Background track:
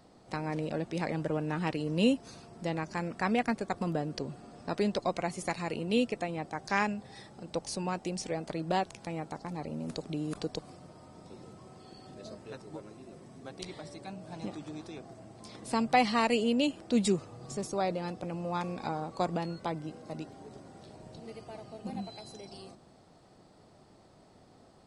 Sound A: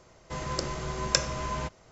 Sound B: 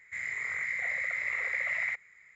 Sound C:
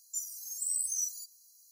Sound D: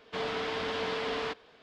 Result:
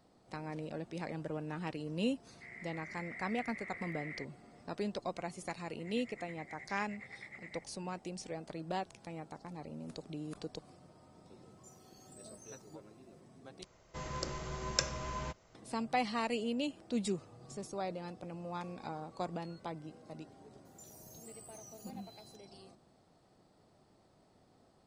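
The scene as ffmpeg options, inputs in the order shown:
ffmpeg -i bed.wav -i cue0.wav -i cue1.wav -i cue2.wav -filter_complex "[2:a]asplit=2[link_01][link_02];[3:a]asplit=2[link_03][link_04];[0:a]volume=-8dB[link_05];[link_01]lowpass=3500[link_06];[link_02]tremolo=f=9.6:d=0.85[link_07];[link_03]aemphasis=mode=reproduction:type=75fm[link_08];[link_04]acompressor=threshold=-40dB:ratio=6:attack=3.2:release=140:knee=1:detection=peak[link_09];[link_05]asplit=2[link_10][link_11];[link_10]atrim=end=13.644[link_12];[1:a]atrim=end=1.91,asetpts=PTS-STARTPTS,volume=-7.5dB[link_13];[link_11]atrim=start=15.546[link_14];[link_06]atrim=end=2.35,asetpts=PTS-STARTPTS,volume=-15dB,afade=type=in:duration=0.004:curve=hsin,afade=type=out:start_time=2.346:duration=0.004:curve=hsin,adelay=2290[link_15];[link_07]atrim=end=2.35,asetpts=PTS-STARTPTS,volume=-16.5dB,afade=type=in:duration=0.004:curve=hsin,afade=type=out:start_time=2.346:duration=0.004:curve=hsin,adelay=5680[link_16];[link_08]atrim=end=1.71,asetpts=PTS-STARTPTS,volume=-13.5dB,afade=type=in:duration=0.004:curve=hsin,afade=type=out:start_time=1.706:duration=0.004:curve=hsin,adelay=11500[link_17];[link_09]atrim=end=1.71,asetpts=PTS-STARTPTS,volume=-12.5dB,afade=type=in:duration=0.004:curve=hsin,afade=type=out:start_time=1.706:duration=0.004:curve=hsin,adelay=20650[link_18];[link_12][link_13]acrossfade=duration=0.004:curve1=hsin:curve2=hsin[link_19];[link_19][link_14]acrossfade=duration=0.004:curve1=hsin:curve2=hsin[link_20];[link_20][link_15][link_16][link_17][link_18]amix=inputs=5:normalize=0" out.wav

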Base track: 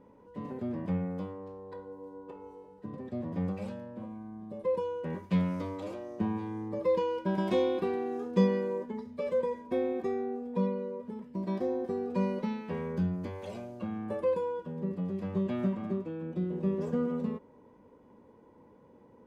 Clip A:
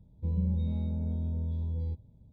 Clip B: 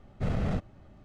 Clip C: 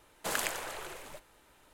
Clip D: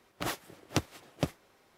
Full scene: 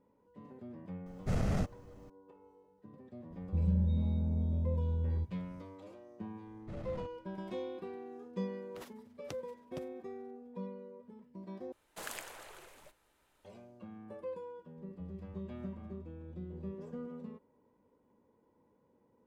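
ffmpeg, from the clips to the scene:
ffmpeg -i bed.wav -i cue0.wav -i cue1.wav -i cue2.wav -i cue3.wav -filter_complex "[2:a]asplit=2[link_01][link_02];[1:a]asplit=2[link_03][link_04];[0:a]volume=-13dB[link_05];[link_01]aexciter=amount=1.8:drive=8.9:freq=5100[link_06];[link_02]alimiter=limit=-23.5dB:level=0:latency=1:release=13[link_07];[4:a]tremolo=f=21:d=0.519[link_08];[link_04]acompressor=threshold=-31dB:ratio=6:attack=3.2:release=140:knee=1:detection=peak[link_09];[link_05]asplit=2[link_10][link_11];[link_10]atrim=end=11.724[link_12];[3:a]atrim=end=1.73,asetpts=PTS-STARTPTS,volume=-10.5dB[link_13];[link_11]atrim=start=13.446[link_14];[link_06]atrim=end=1.04,asetpts=PTS-STARTPTS,volume=-2.5dB,afade=type=in:duration=0.004:curve=hsin,afade=type=out:start_time=1.036:duration=0.004:curve=hsin,adelay=1060[link_15];[link_03]atrim=end=2.32,asetpts=PTS-STARTPTS,volume=-0.5dB,afade=type=in:duration=0.004:curve=hsin,afade=type=out:start_time=2.316:duration=0.004:curve=hsin,adelay=3300[link_16];[link_07]atrim=end=1.04,asetpts=PTS-STARTPTS,volume=-14dB,afade=type=in:duration=0.004:curve=hsin,afade=type=out:start_time=1.036:duration=0.004:curve=hsin,adelay=6470[link_17];[link_08]atrim=end=1.77,asetpts=PTS-STARTPTS,volume=-16dB,afade=type=in:duration=0.004:curve=hsin,afade=type=out:start_time=1.766:duration=0.004:curve=hsin,adelay=8540[link_18];[link_09]atrim=end=2.32,asetpts=PTS-STARTPTS,volume=-15.5dB,afade=type=in:duration=0.004:curve=hsin,afade=type=out:start_time=2.316:duration=0.004:curve=hsin,adelay=14770[link_19];[link_12][link_13]acrossfade=duration=0.004:curve1=hsin:curve2=hsin[link_20];[link_20][link_14]acrossfade=duration=0.004:curve1=hsin:curve2=hsin[link_21];[link_21][link_15][link_16][link_17][link_18][link_19]amix=inputs=6:normalize=0" out.wav

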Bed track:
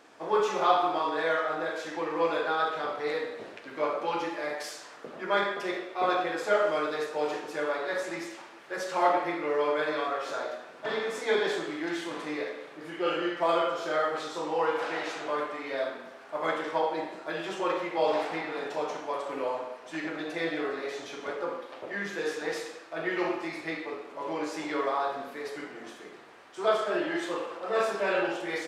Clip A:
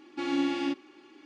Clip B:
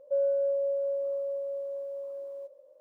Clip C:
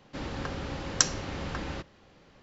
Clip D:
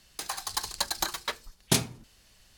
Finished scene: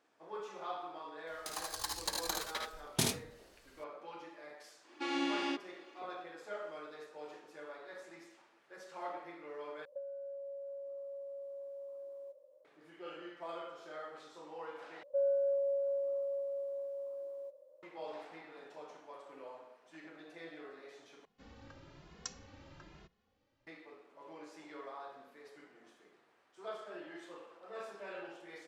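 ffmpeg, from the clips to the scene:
ffmpeg -i bed.wav -i cue0.wav -i cue1.wav -i cue2.wav -i cue3.wav -filter_complex "[2:a]asplit=2[link_01][link_02];[0:a]volume=-18.5dB[link_03];[4:a]aecho=1:1:55|76:0.447|0.596[link_04];[1:a]highpass=420[link_05];[link_01]acompressor=threshold=-38dB:ratio=12:attack=61:release=134:knee=6:detection=rms[link_06];[3:a]asplit=2[link_07][link_08];[link_08]adelay=2.4,afreqshift=1.1[link_09];[link_07][link_09]amix=inputs=2:normalize=1[link_10];[link_03]asplit=4[link_11][link_12][link_13][link_14];[link_11]atrim=end=9.854[link_15];[link_06]atrim=end=2.8,asetpts=PTS-STARTPTS,volume=-6.5dB[link_16];[link_12]atrim=start=12.646:end=15.034[link_17];[link_02]atrim=end=2.8,asetpts=PTS-STARTPTS,volume=-4.5dB[link_18];[link_13]atrim=start=17.826:end=21.254[link_19];[link_10]atrim=end=2.42,asetpts=PTS-STARTPTS,volume=-17.5dB[link_20];[link_14]atrim=start=23.666[link_21];[link_04]atrim=end=2.57,asetpts=PTS-STARTPTS,volume=-8.5dB,afade=type=in:duration=0.004:curve=hsin,afade=type=out:start_time=2.566:duration=0.004:curve=hsin,adelay=1270[link_22];[link_05]atrim=end=1.25,asetpts=PTS-STARTPTS,volume=-1.5dB,afade=type=in:duration=0.1,afade=type=out:start_time=1.15:duration=0.1,adelay=4830[link_23];[link_15][link_16]acrossfade=duration=0.004:curve1=hsin:curve2=hsin[link_24];[link_24][link_17]acrossfade=duration=0.004:curve1=hsin:curve2=hsin[link_25];[link_25][link_18]acrossfade=duration=0.004:curve1=hsin:curve2=hsin[link_26];[link_26][link_19]acrossfade=duration=0.004:curve1=hsin:curve2=hsin[link_27];[link_27][link_20]acrossfade=duration=0.004:curve1=hsin:curve2=hsin[link_28];[link_28][link_21]acrossfade=duration=0.004:curve1=hsin:curve2=hsin[link_29];[link_29][link_22][link_23]amix=inputs=3:normalize=0" out.wav

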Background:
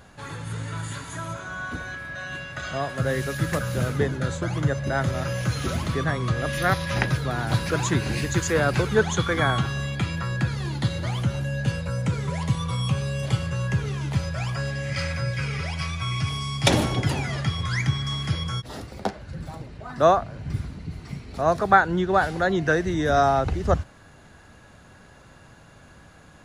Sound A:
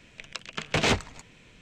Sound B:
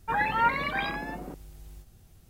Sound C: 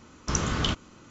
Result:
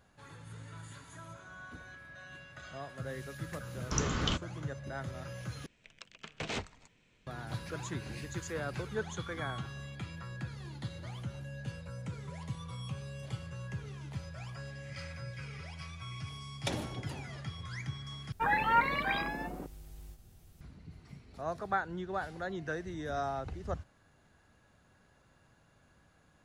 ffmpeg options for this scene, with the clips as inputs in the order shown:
ffmpeg -i bed.wav -i cue0.wav -i cue1.wav -i cue2.wav -filter_complex "[0:a]volume=-16dB[link_01];[1:a]lowpass=11000[link_02];[link_01]asplit=3[link_03][link_04][link_05];[link_03]atrim=end=5.664[link_06];[link_02]atrim=end=1.61,asetpts=PTS-STARTPTS,volume=-14dB[link_07];[link_04]atrim=start=7.266:end=18.324[link_08];[2:a]atrim=end=2.29,asetpts=PTS-STARTPTS,volume=-2.5dB[link_09];[link_05]atrim=start=20.606[link_10];[3:a]atrim=end=1.1,asetpts=PTS-STARTPTS,volume=-5.5dB,afade=type=in:duration=0.004:curve=hsin,afade=type=out:start_time=1.096:duration=0.004:curve=hsin,adelay=3630[link_11];[link_06][link_07]acrossfade=duration=0.004:curve1=hsin:curve2=hsin[link_12];[link_12][link_08]acrossfade=duration=0.004:curve1=hsin:curve2=hsin[link_13];[link_13][link_09]acrossfade=duration=0.004:curve1=hsin:curve2=hsin[link_14];[link_14][link_10]acrossfade=duration=0.004:curve1=hsin:curve2=hsin[link_15];[link_15][link_11]amix=inputs=2:normalize=0" out.wav

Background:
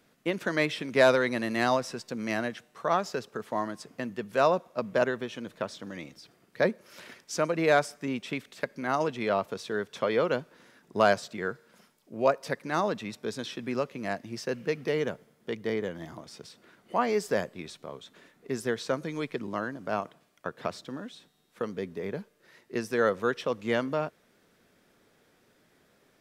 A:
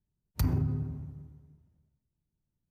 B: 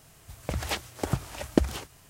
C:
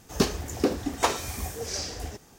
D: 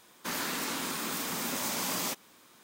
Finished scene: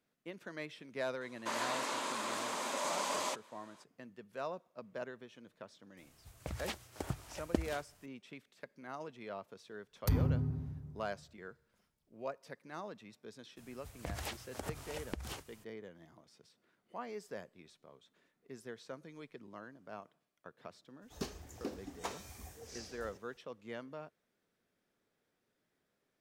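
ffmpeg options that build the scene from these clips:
ffmpeg -i bed.wav -i cue0.wav -i cue1.wav -i cue2.wav -i cue3.wav -filter_complex "[2:a]asplit=2[link_01][link_02];[0:a]volume=-17.5dB[link_03];[4:a]highpass=320,equalizer=frequency=590:width_type=q:width=4:gain=10,equalizer=frequency=1000:width_type=q:width=4:gain=8,equalizer=frequency=5400:width_type=q:width=4:gain=-4,equalizer=frequency=9300:width_type=q:width=4:gain=-5,lowpass=frequency=9900:width=0.5412,lowpass=frequency=9900:width=1.3066[link_04];[link_02]acompressor=threshold=-29dB:ratio=6:attack=3.2:release=140:knee=1:detection=peak[link_05];[link_04]atrim=end=2.63,asetpts=PTS-STARTPTS,volume=-4.5dB,afade=type=in:duration=0.004:curve=hsin,afade=type=out:start_time=2.626:duration=0.004:curve=hsin,adelay=1210[link_06];[link_01]atrim=end=2.09,asetpts=PTS-STARTPTS,volume=-11dB,afade=type=in:duration=0.004:curve=hsin,afade=type=out:start_time=2.086:duration=0.004:curve=hsin,adelay=5970[link_07];[1:a]atrim=end=2.7,asetpts=PTS-STARTPTS,volume=-2.5dB,afade=type=in:duration=0.004:curve=hsin,afade=type=out:start_time=2.696:duration=0.004:curve=hsin,adelay=9680[link_08];[link_05]atrim=end=2.09,asetpts=PTS-STARTPTS,volume=-7dB,afade=type=in:duration=0.02,afade=type=out:start_time=2.07:duration=0.02,adelay=13560[link_09];[3:a]atrim=end=2.38,asetpts=PTS-STARTPTS,volume=-17.5dB,afade=type=in:duration=0.02,afade=type=out:start_time=2.36:duration=0.02,adelay=21010[link_10];[link_03][link_06][link_07][link_08][link_09][link_10]amix=inputs=6:normalize=0" out.wav

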